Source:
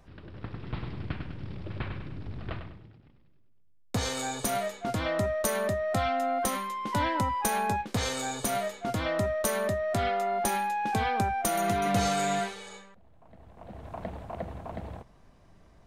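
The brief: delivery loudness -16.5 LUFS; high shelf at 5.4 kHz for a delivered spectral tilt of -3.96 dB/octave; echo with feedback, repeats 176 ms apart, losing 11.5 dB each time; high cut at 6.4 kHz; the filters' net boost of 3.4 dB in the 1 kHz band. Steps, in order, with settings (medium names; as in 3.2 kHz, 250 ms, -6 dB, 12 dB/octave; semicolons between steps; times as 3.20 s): low-pass 6.4 kHz; peaking EQ 1 kHz +4.5 dB; treble shelf 5.4 kHz +8.5 dB; feedback delay 176 ms, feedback 27%, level -11.5 dB; trim +11 dB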